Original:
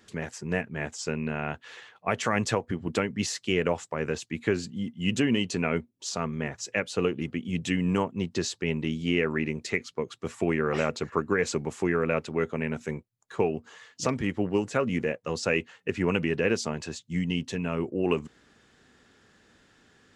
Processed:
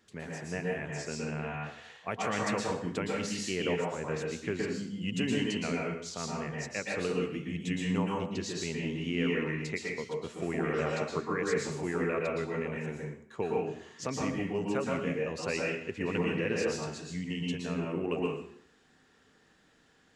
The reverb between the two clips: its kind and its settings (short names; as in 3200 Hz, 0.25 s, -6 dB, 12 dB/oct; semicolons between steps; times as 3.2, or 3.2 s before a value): plate-style reverb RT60 0.62 s, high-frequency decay 0.9×, pre-delay 0.105 s, DRR -2.5 dB; gain -8.5 dB